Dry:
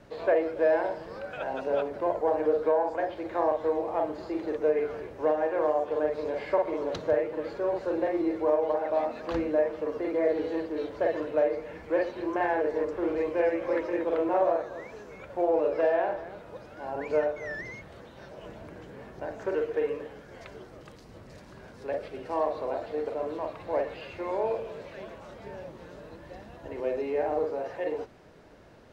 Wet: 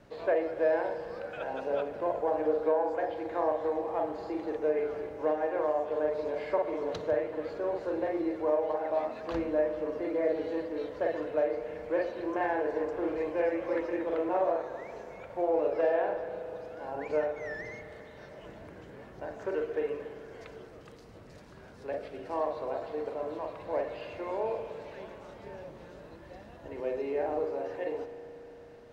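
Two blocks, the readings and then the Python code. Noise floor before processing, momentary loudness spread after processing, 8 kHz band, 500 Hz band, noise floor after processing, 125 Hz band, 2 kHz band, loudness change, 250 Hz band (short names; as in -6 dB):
-50 dBFS, 19 LU, n/a, -3.0 dB, -50 dBFS, -3.0 dB, -3.0 dB, -3.0 dB, -3.0 dB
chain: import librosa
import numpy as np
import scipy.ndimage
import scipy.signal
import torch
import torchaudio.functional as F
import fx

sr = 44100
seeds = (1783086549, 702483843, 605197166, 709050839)

y = fx.rev_spring(x, sr, rt60_s=4.0, pass_ms=(36,), chirp_ms=80, drr_db=10.0)
y = F.gain(torch.from_numpy(y), -3.5).numpy()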